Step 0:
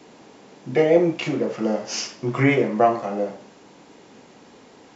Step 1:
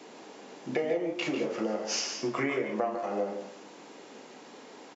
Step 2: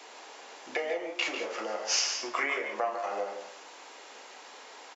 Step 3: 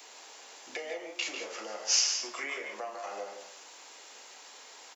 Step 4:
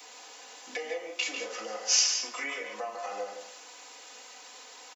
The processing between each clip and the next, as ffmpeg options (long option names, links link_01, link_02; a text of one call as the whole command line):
ffmpeg -i in.wav -filter_complex "[0:a]highpass=260,acompressor=threshold=-28dB:ratio=6,asplit=2[link_01][link_02];[link_02]aecho=0:1:147|167:0.316|0.282[link_03];[link_01][link_03]amix=inputs=2:normalize=0" out.wav
ffmpeg -i in.wav -af "highpass=770,volume=4.5dB" out.wav
ffmpeg -i in.wav -filter_complex "[0:a]acrossover=split=360|520|2600[link_01][link_02][link_03][link_04];[link_03]alimiter=level_in=3dB:limit=-24dB:level=0:latency=1:release=186,volume=-3dB[link_05];[link_01][link_02][link_05][link_04]amix=inputs=4:normalize=0,crystalizer=i=3:c=0,volume=-6.5dB" out.wav
ffmpeg -i in.wav -af "aecho=1:1:4:0.78" out.wav